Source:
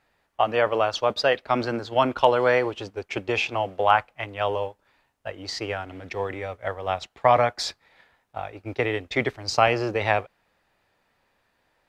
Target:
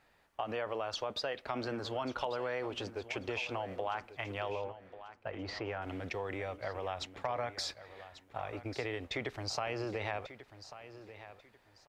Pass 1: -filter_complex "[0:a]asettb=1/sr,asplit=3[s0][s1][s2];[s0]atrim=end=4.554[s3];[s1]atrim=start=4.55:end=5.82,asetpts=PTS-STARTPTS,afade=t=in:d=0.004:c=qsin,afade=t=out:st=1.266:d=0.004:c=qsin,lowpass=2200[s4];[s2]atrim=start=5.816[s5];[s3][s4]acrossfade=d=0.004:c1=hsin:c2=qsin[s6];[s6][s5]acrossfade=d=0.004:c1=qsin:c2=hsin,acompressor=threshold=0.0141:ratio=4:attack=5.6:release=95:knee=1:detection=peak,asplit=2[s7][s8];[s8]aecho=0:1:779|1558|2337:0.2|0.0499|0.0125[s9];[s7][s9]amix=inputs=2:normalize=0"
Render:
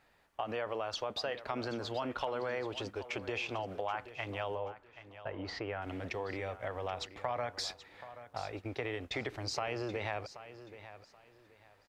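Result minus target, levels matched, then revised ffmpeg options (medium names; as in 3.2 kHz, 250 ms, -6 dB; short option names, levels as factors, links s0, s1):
echo 362 ms early
-filter_complex "[0:a]asettb=1/sr,asplit=3[s0][s1][s2];[s0]atrim=end=4.554[s3];[s1]atrim=start=4.55:end=5.82,asetpts=PTS-STARTPTS,afade=t=in:d=0.004:c=qsin,afade=t=out:st=1.266:d=0.004:c=qsin,lowpass=2200[s4];[s2]atrim=start=5.816[s5];[s3][s4]acrossfade=d=0.004:c1=hsin:c2=qsin[s6];[s6][s5]acrossfade=d=0.004:c1=qsin:c2=hsin,acompressor=threshold=0.0141:ratio=4:attack=5.6:release=95:knee=1:detection=peak,asplit=2[s7][s8];[s8]aecho=0:1:1141|2282|3423:0.2|0.0499|0.0125[s9];[s7][s9]amix=inputs=2:normalize=0"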